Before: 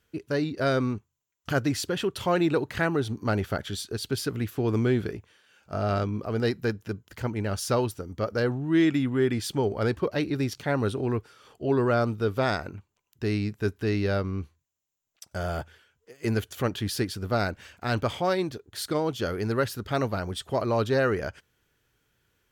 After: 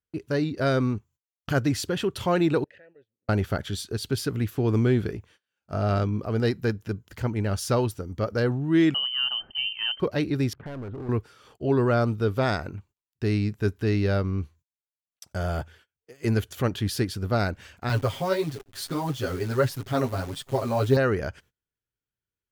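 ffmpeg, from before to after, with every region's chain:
ffmpeg -i in.wav -filter_complex "[0:a]asettb=1/sr,asplit=3[link_01][link_02][link_03];[link_01]atrim=end=2.644[link_04];[link_02]atrim=start=2.64:end=3.29,asetpts=PTS-STARTPTS,afade=type=in:duration=0.004:curve=qsin,afade=type=out:start_time=0.646:duration=0.004:curve=qsin,asubboost=boost=11.5:cutoff=170,acompressor=threshold=-36dB:ratio=16:attack=3.2:release=140:knee=1:detection=peak,asplit=3[link_05][link_06][link_07];[link_05]bandpass=frequency=530:width_type=q:width=8,volume=0dB[link_08];[link_06]bandpass=frequency=1840:width_type=q:width=8,volume=-6dB[link_09];[link_07]bandpass=frequency=2480:width_type=q:width=8,volume=-9dB[link_10];[link_08][link_09][link_10]amix=inputs=3:normalize=0[link_11];[link_03]atrim=start=3.286[link_12];[link_04][link_11]acrossfade=duration=0.004:curve1=hsin:curve2=qsin[link_13];[link_13][link_12]acrossfade=duration=0.004:curve1=qsin:curve2=hsin,asettb=1/sr,asplit=3[link_14][link_15][link_16];[link_14]atrim=end=8.944[link_17];[link_15]atrim=start=8.94:end=10,asetpts=PTS-STARTPTS,afade=type=in:duration=0.004:curve=qsin,afade=type=out:start_time=1.056:duration=0.004:curve=qsin,equalizer=frequency=840:width=0.67:gain=-11,lowpass=frequency=2700:width_type=q:width=0.5098,lowpass=frequency=2700:width_type=q:width=0.6013,lowpass=frequency=2700:width_type=q:width=0.9,lowpass=frequency=2700:width_type=q:width=2.563,afreqshift=-3200[link_18];[link_16]atrim=start=9.996[link_19];[link_17][link_18]acrossfade=duration=0.004:curve1=hsin:curve2=qsin[link_20];[link_20][link_19]acrossfade=duration=0.004:curve1=qsin:curve2=hsin,asettb=1/sr,asplit=3[link_21][link_22][link_23];[link_21]atrim=end=10.534[link_24];[link_22]atrim=start=10.53:end=11.09,asetpts=PTS-STARTPTS,afade=type=in:duration=0.004:curve=qsin,afade=type=out:start_time=0.556:duration=0.004:curve=qsin,lowpass=frequency=1600:width=0.5412,lowpass=frequency=1600:width=1.3066,acompressor=threshold=-31dB:ratio=4:attack=3.2:release=140:knee=1:detection=peak,volume=34.5dB,asoftclip=hard,volume=-34.5dB[link_25];[link_23]atrim=start=11.086[link_26];[link_24][link_25]acrossfade=duration=0.004:curve1=hsin:curve2=qsin[link_27];[link_27][link_26]acrossfade=duration=0.004:curve1=qsin:curve2=hsin,asettb=1/sr,asplit=3[link_28][link_29][link_30];[link_28]atrim=end=17.894[link_31];[link_29]atrim=start=17.89:end=20.97,asetpts=PTS-STARTPTS,afade=type=in:duration=0.004:curve=qsin,afade=type=out:start_time=3.076:duration=0.004:curve=qsin,aecho=1:1:7.4:0.88,atrim=end_sample=135828,flanger=delay=6.2:depth=6.5:regen=22:speed=1.6:shape=sinusoidal,acrusher=bits=8:dc=4:mix=0:aa=0.000001[link_32];[link_30]atrim=start=20.966[link_33];[link_31][link_32]acrossfade=duration=0.004:curve1=hsin:curve2=qsin[link_34];[link_34][link_33]acrossfade=duration=0.004:curve1=qsin:curve2=hsin,agate=range=-25dB:threshold=-55dB:ratio=16:detection=peak,lowshelf=frequency=190:gain=5.5" out.wav

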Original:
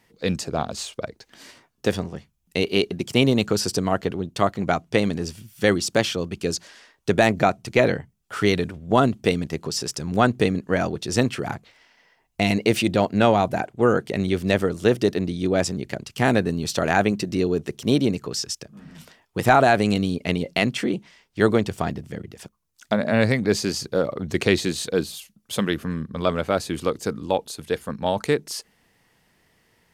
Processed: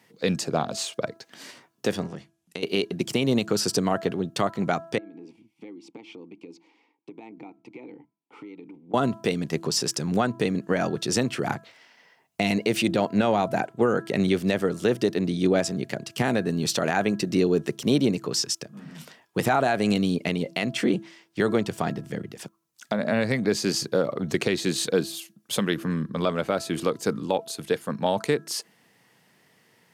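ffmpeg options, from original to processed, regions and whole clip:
ffmpeg -i in.wav -filter_complex "[0:a]asettb=1/sr,asplit=3[link_01][link_02][link_03];[link_01]atrim=end=2.064[link_04];[link_02]atrim=start=2.06:end=2.63,asetpts=PTS-STARTPTS,afade=type=in:duration=0.004:curve=qsin,afade=type=out:start_time=0.566:duration=0.004:curve=qsin,lowpass=frequency=12000:width=0.5412,lowpass=frequency=12000:width=1.3066,acompressor=threshold=-31dB:ratio=16:attack=3.2:release=140:knee=1:detection=peak[link_05];[link_03]atrim=start=2.626[link_06];[link_04][link_05]acrossfade=duration=0.004:curve1=hsin:curve2=qsin[link_07];[link_07][link_06]acrossfade=duration=0.004:curve1=qsin:curve2=hsin,asettb=1/sr,asplit=3[link_08][link_09][link_10];[link_08]atrim=end=4.984[link_11];[link_09]atrim=start=4.98:end=8.94,asetpts=PTS-STARTPTS,afade=type=in:duration=0.004:curve=qsin,afade=type=out:start_time=3.956:duration=0.004:curve=qsin,asplit=3[link_12][link_13][link_14];[link_12]bandpass=frequency=300:width_type=q:width=8,volume=0dB[link_15];[link_13]bandpass=frequency=870:width_type=q:width=8,volume=-6dB[link_16];[link_14]bandpass=frequency=2240:width_type=q:width=8,volume=-9dB[link_17];[link_15][link_16][link_17]amix=inputs=3:normalize=0,equalizer=frequency=500:width=3.1:gain=14.5,acompressor=threshold=-40dB:ratio=10:attack=3.2:release=140:knee=1:detection=peak[link_18];[link_10]atrim=start=8.936[link_19];[link_11][link_18]acrossfade=duration=0.004:curve1=hsin:curve2=qsin[link_20];[link_20][link_19]acrossfade=duration=0.004:curve1=qsin:curve2=hsin,highpass=frequency=120:width=0.5412,highpass=frequency=120:width=1.3066,bandreject=frequency=331.4:width_type=h:width=4,bandreject=frequency=662.8:width_type=h:width=4,bandreject=frequency=994.2:width_type=h:width=4,bandreject=frequency=1325.6:width_type=h:width=4,bandreject=frequency=1657:width_type=h:width=4,alimiter=limit=-13dB:level=0:latency=1:release=276,volume=2dB" out.wav

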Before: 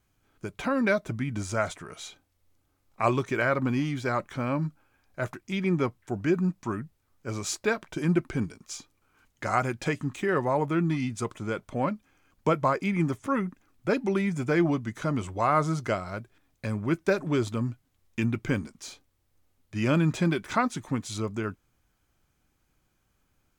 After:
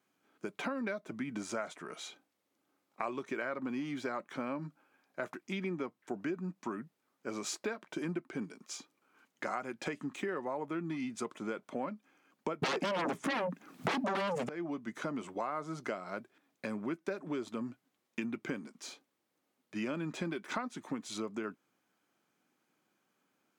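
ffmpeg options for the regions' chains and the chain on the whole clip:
ffmpeg -i in.wav -filter_complex "[0:a]asettb=1/sr,asplit=3[link_01][link_02][link_03];[link_01]atrim=end=12.624[link_04];[link_02]atrim=start=12.62:end=14.49,asetpts=PTS-STARTPTS,afade=type=in:duration=0.004:curve=qsin,afade=type=out:start_time=1.866:duration=0.004:curve=qsin,equalizer=frequency=170:width_type=o:width=0.51:gain=10.5,acontrast=79,aeval=exprs='0.596*sin(PI/2*6.31*val(0)/0.596)':channel_layout=same[link_05];[link_03]atrim=start=14.486[link_06];[link_04][link_05]acrossfade=duration=0.004:curve1=hsin:curve2=qsin[link_07];[link_07][link_06]acrossfade=duration=0.004:curve1=qsin:curve2=hsin,highpass=frequency=200:width=0.5412,highpass=frequency=200:width=1.3066,highshelf=frequency=4700:gain=-6.5,acompressor=threshold=-33dB:ratio=6,volume=-1dB" out.wav

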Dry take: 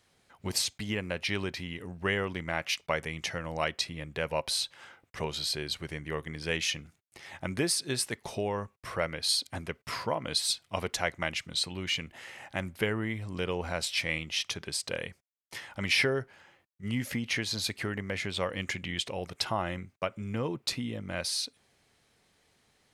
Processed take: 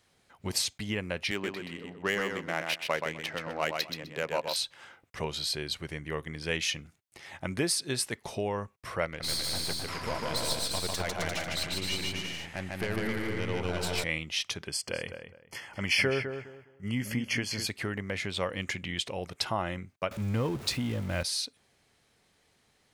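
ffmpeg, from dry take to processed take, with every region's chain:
ffmpeg -i in.wav -filter_complex "[0:a]asettb=1/sr,asplit=3[link_01][link_02][link_03];[link_01]atrim=end=1.314[link_04];[link_02]atrim=start=1.31:end=4.56,asetpts=PTS-STARTPTS,afade=type=in:duration=0.004:curve=qsin,afade=type=out:start_time=3.246:duration=0.004:curve=qsin,highpass=200,lowpass=5800,adynamicsmooth=sensitivity=6:basefreq=1400,aecho=1:1:127|254|381:0.562|0.107|0.0203,atrim=end_sample=143325[link_05];[link_03]atrim=start=4.556[link_06];[link_04][link_05]acrossfade=duration=0.004:curve1=hsin:curve2=qsin[link_07];[link_07][link_06]acrossfade=duration=0.004:curve1=qsin:curve2=hsin,asettb=1/sr,asplit=3[link_08][link_09][link_10];[link_08]atrim=end=9.054[link_11];[link_09]atrim=start=9.05:end=14.04,asetpts=PTS-STARTPTS,afade=type=in:duration=0.004:curve=qsin,afade=type=out:start_time=4.986:duration=0.004:curve=qsin,aeval=exprs='(tanh(22.4*val(0)+0.65)-tanh(0.65))/22.4':channel_layout=same,aecho=1:1:150|262.5|346.9|410.2|457.6|493.2:0.794|0.631|0.501|0.398|0.316|0.251,atrim=end_sample=220059[link_12];[link_10]atrim=start=14.036[link_13];[link_11][link_12]acrossfade=duration=0.004:curve1=hsin:curve2=qsin[link_14];[link_14][link_13]acrossfade=duration=0.004:curve1=qsin:curve2=hsin,asettb=1/sr,asplit=3[link_15][link_16][link_17];[link_15]atrim=end=14.674[link_18];[link_16]atrim=start=14.67:end=17.67,asetpts=PTS-STARTPTS,afade=type=in:duration=0.004:curve=qsin,afade=type=out:start_time=2.996:duration=0.004:curve=qsin,asuperstop=centerf=3800:order=20:qfactor=5.3,asplit=2[link_19][link_20];[link_20]adelay=206,lowpass=frequency=2300:poles=1,volume=-8dB,asplit=2[link_21][link_22];[link_22]adelay=206,lowpass=frequency=2300:poles=1,volume=0.25,asplit=2[link_23][link_24];[link_24]adelay=206,lowpass=frequency=2300:poles=1,volume=0.25[link_25];[link_19][link_21][link_23][link_25]amix=inputs=4:normalize=0,atrim=end_sample=132300[link_26];[link_17]atrim=start=17.666[link_27];[link_18][link_26]acrossfade=duration=0.004:curve1=hsin:curve2=qsin[link_28];[link_28][link_27]acrossfade=duration=0.004:curve1=qsin:curve2=hsin,asettb=1/sr,asplit=3[link_29][link_30][link_31];[link_29]atrim=end=20.114[link_32];[link_30]atrim=start=20.11:end=21.23,asetpts=PTS-STARTPTS,afade=type=in:duration=0.004:curve=qsin,afade=type=out:start_time=1.116:duration=0.004:curve=qsin,aeval=exprs='val(0)+0.5*0.0112*sgn(val(0))':channel_layout=same,equalizer=frequency=76:width_type=o:width=1.1:gain=9[link_33];[link_31]atrim=start=21.226[link_34];[link_32][link_33]acrossfade=duration=0.004:curve1=hsin:curve2=qsin[link_35];[link_35][link_34]acrossfade=duration=0.004:curve1=qsin:curve2=hsin" out.wav

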